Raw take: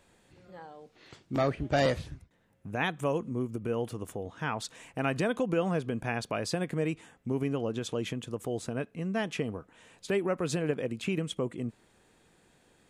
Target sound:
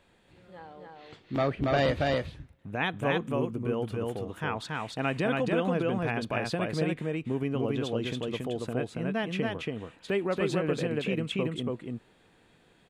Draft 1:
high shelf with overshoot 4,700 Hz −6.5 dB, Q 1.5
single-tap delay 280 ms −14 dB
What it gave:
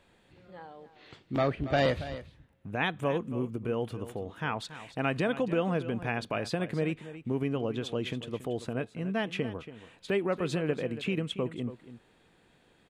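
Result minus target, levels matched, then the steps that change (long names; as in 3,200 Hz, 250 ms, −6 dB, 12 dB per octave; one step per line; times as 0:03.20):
echo-to-direct −12 dB
change: single-tap delay 280 ms −2 dB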